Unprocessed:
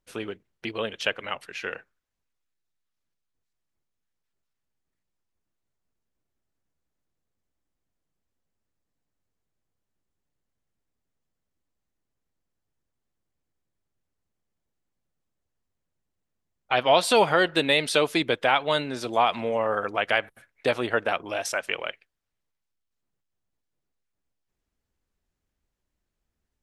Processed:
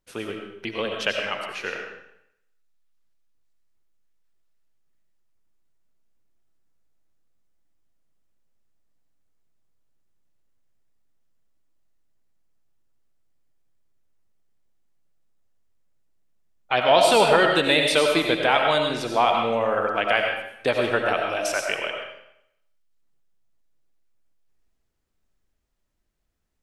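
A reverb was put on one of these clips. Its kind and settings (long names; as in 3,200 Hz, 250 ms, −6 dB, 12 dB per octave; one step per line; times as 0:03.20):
comb and all-pass reverb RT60 0.76 s, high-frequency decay 0.95×, pre-delay 50 ms, DRR 2 dB
level +1 dB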